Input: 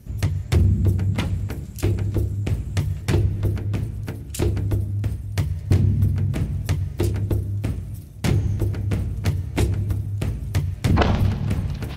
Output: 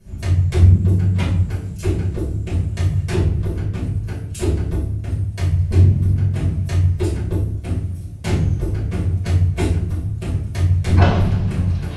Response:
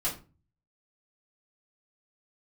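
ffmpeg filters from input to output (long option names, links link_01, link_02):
-filter_complex "[1:a]atrim=start_sample=2205,afade=type=out:start_time=0.18:duration=0.01,atrim=end_sample=8379,asetrate=23814,aresample=44100[link_01];[0:a][link_01]afir=irnorm=-1:irlink=0,volume=-9dB"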